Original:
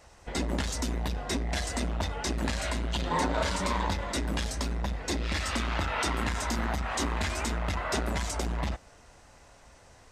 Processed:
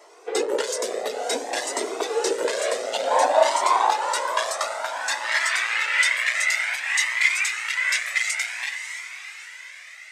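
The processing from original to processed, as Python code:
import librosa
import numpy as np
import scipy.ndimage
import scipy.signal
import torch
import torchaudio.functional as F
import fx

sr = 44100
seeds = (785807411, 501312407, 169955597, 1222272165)

p1 = fx.filter_sweep_highpass(x, sr, from_hz=450.0, to_hz=2100.0, start_s=2.64, end_s=5.86, q=5.6)
p2 = p1 + fx.echo_diffused(p1, sr, ms=588, feedback_pct=54, wet_db=-10, dry=0)
p3 = fx.dynamic_eq(p2, sr, hz=8100.0, q=1.5, threshold_db=-52.0, ratio=4.0, max_db=5)
p4 = scipy.signal.sosfilt(scipy.signal.butter(4, 260.0, 'highpass', fs=sr, output='sos'), p3)
p5 = fx.comb_cascade(p4, sr, direction='rising', hz=0.56)
y = p5 * librosa.db_to_amplitude(8.5)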